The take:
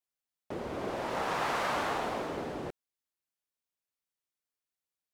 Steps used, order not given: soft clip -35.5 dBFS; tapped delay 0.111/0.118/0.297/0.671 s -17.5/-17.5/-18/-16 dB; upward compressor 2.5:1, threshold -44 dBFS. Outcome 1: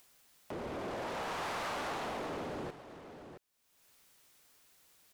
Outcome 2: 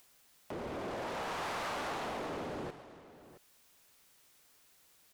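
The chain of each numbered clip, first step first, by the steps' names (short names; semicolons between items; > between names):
soft clip > tapped delay > upward compressor; soft clip > upward compressor > tapped delay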